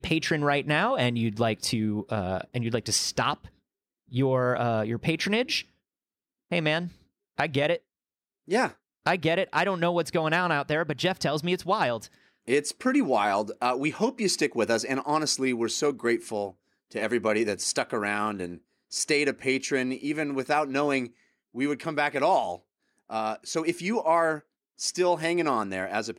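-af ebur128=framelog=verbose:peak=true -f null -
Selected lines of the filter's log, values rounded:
Integrated loudness:
  I:         -26.8 LUFS
  Threshold: -37.2 LUFS
Loudness range:
  LRA:         2.6 LU
  Threshold: -47.5 LUFS
  LRA low:   -28.8 LUFS
  LRA high:  -26.2 LUFS
True peak:
  Peak:      -11.7 dBFS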